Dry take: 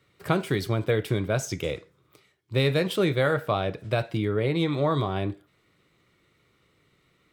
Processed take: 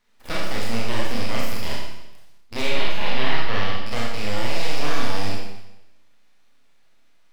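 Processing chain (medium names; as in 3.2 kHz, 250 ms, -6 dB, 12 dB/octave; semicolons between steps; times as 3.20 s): rattle on loud lows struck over -34 dBFS, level -18 dBFS; peaking EQ 240 Hz -3.5 dB 1.5 oct; full-wave rectifier; 2.62–3.85 s: resonant high shelf 5 kHz -11 dB, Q 1.5; Schroeder reverb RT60 0.92 s, combs from 27 ms, DRR -4 dB; trim -3 dB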